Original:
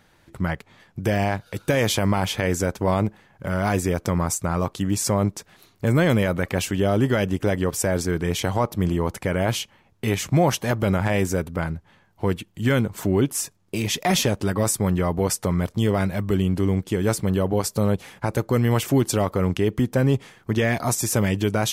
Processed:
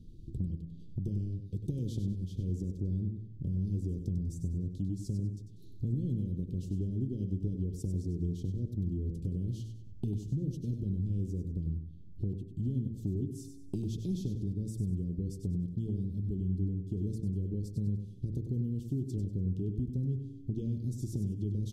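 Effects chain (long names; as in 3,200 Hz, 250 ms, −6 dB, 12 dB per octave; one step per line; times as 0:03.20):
inverse Chebyshev band-stop filter 720–2,000 Hz, stop band 50 dB
spectral tilt −4 dB per octave
hum removal 55.71 Hz, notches 31
downward compressor 4 to 1, threshold −33 dBFS, peak gain reduction 23 dB
repeating echo 97 ms, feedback 32%, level −8 dB
level −2.5 dB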